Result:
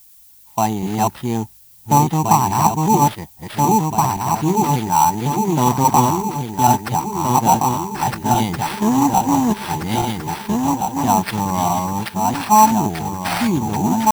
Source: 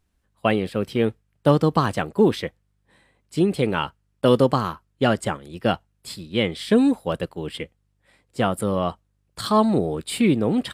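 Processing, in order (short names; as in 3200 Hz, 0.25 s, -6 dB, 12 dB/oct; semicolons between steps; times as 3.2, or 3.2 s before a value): regenerating reverse delay 0.635 s, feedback 71%, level -1 dB; EQ curve 160 Hz 0 dB, 360 Hz -5 dB, 530 Hz -19 dB, 880 Hz +15 dB, 1300 Hz -13 dB, 3000 Hz -10 dB, 8500 Hz +1 dB, 12000 Hz -9 dB; AGC gain up to 3 dB; high shelf 4800 Hz +9 dB; tempo 0.76×; sample-rate reducer 6800 Hz, jitter 0%; added noise violet -48 dBFS; gain +1 dB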